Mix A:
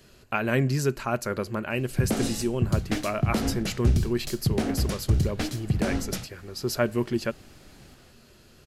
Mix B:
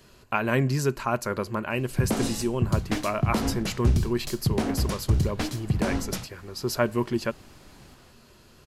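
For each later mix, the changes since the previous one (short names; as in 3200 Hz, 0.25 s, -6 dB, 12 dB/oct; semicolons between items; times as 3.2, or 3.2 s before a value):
master: add bell 1000 Hz +7.5 dB 0.37 oct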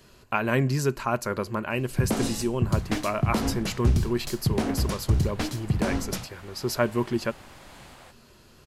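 second sound +10.5 dB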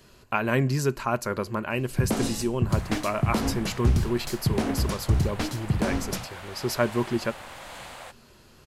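second sound +8.5 dB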